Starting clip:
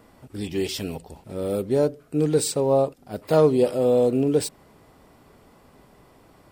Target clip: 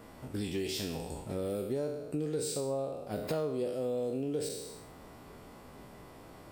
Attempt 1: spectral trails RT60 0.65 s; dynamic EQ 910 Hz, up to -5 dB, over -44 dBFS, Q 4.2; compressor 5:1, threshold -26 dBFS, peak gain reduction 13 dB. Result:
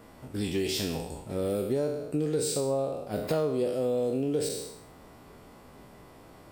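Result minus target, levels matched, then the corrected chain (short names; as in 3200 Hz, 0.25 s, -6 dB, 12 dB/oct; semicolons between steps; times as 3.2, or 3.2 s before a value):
compressor: peak gain reduction -5.5 dB
spectral trails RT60 0.65 s; dynamic EQ 910 Hz, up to -5 dB, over -44 dBFS, Q 4.2; compressor 5:1, threshold -33 dBFS, peak gain reduction 18.5 dB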